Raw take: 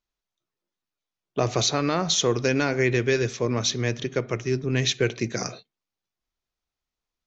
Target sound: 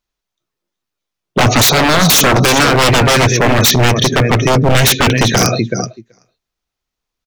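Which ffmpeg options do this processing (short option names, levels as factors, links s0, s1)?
-af "aecho=1:1:379|758:0.211|0.0317,acontrast=59,afftdn=nr=21:nf=-34,aeval=exprs='0.126*(abs(mod(val(0)/0.126+3,4)-2)-1)':c=same,adynamicequalizer=threshold=0.00708:dfrequency=380:dqfactor=4.8:tfrequency=380:tqfactor=4.8:attack=5:release=100:ratio=0.375:range=2.5:mode=cutabove:tftype=bell,acompressor=threshold=0.0501:ratio=6,alimiter=level_in=17.8:limit=0.891:release=50:level=0:latency=1,volume=0.708"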